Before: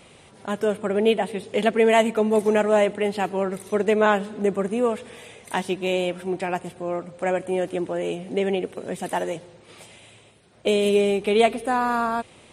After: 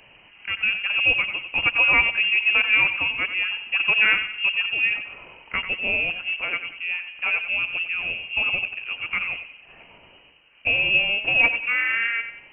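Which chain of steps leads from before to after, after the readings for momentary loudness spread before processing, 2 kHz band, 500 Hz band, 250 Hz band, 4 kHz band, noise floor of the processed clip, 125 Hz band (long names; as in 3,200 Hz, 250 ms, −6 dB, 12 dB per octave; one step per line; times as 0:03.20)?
11 LU, +12.5 dB, −19.5 dB, −18.5 dB, +8.0 dB, −52 dBFS, −10.0 dB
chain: tape delay 92 ms, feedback 44%, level −8 dB, low-pass 2,100 Hz
voice inversion scrambler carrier 3,000 Hz
level −1 dB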